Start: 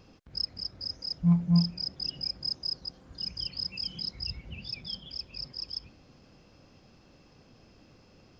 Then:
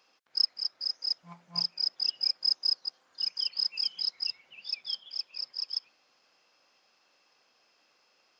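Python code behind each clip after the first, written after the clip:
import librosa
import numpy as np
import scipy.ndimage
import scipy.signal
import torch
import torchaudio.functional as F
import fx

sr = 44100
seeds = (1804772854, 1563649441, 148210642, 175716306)

y = scipy.signal.sosfilt(scipy.signal.butter(2, 910.0, 'highpass', fs=sr, output='sos'), x)
y = fx.upward_expand(y, sr, threshold_db=-48.0, expansion=1.5)
y = y * 10.0 ** (6.5 / 20.0)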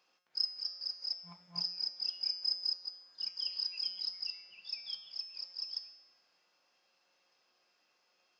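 y = fx.comb_fb(x, sr, f0_hz=180.0, decay_s=0.88, harmonics='all', damping=0.0, mix_pct=80)
y = y * 10.0 ** (5.5 / 20.0)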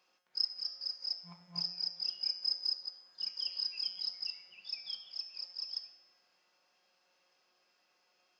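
y = fx.room_shoebox(x, sr, seeds[0], volume_m3=2500.0, walls='furnished', distance_m=1.0)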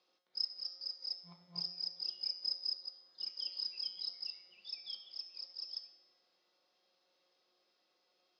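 y = fx.cabinet(x, sr, low_hz=120.0, low_slope=12, high_hz=5800.0, hz=(340.0, 500.0, 940.0, 1600.0, 2600.0, 3800.0), db=(6, 4, -3, -6, -6, 8))
y = y * 10.0 ** (-3.5 / 20.0)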